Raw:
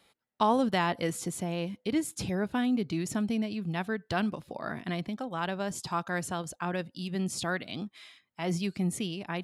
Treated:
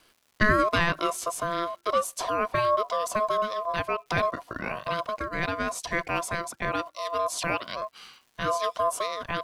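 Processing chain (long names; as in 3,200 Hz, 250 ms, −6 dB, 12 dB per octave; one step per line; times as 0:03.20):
ring modulation 850 Hz
surface crackle 270 per second −56 dBFS
level +6.5 dB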